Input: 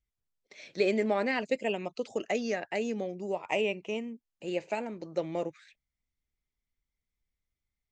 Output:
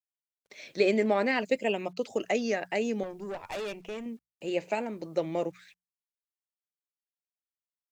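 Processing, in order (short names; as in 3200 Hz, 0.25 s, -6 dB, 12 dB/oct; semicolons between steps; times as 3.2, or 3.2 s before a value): 3.03–4.06 tube stage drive 35 dB, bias 0.6; bit-crush 12-bit; notches 60/120/180 Hz; gain +2.5 dB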